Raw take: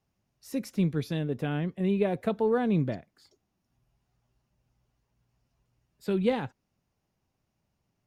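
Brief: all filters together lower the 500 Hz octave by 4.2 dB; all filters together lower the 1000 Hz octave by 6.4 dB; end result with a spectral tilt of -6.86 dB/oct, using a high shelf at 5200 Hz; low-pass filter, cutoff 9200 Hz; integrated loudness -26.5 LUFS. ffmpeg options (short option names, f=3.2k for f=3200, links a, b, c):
-af "lowpass=9.2k,equalizer=f=500:t=o:g=-3.5,equalizer=f=1k:t=o:g=-8,highshelf=f=5.2k:g=8.5,volume=4.5dB"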